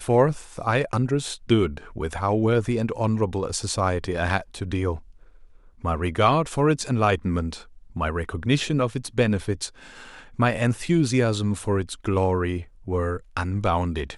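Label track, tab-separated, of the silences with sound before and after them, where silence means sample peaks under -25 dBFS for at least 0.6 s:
4.940000	5.840000	silence
9.660000	10.390000	silence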